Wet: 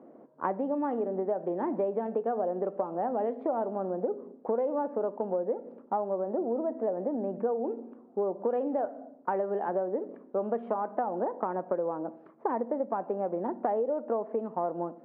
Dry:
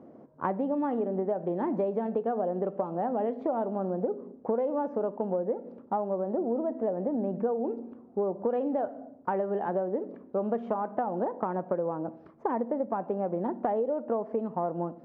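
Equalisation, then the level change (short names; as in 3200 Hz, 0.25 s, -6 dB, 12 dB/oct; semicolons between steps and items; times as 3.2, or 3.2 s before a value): BPF 250–2500 Hz; 0.0 dB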